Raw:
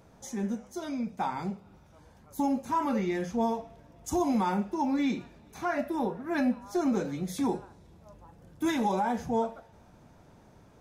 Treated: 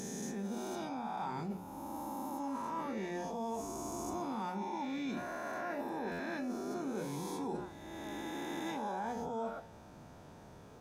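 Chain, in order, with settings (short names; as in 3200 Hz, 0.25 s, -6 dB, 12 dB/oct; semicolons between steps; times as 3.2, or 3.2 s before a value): spectral swells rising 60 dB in 1.88 s; low shelf 63 Hz -7.5 dB; notches 60/120/180/240/300/360 Hz; reverse; compressor 6:1, threshold -37 dBFS, peak gain reduction 15 dB; reverse; notch 2100 Hz, Q 18; stuck buffer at 6.11, samples 512, times 6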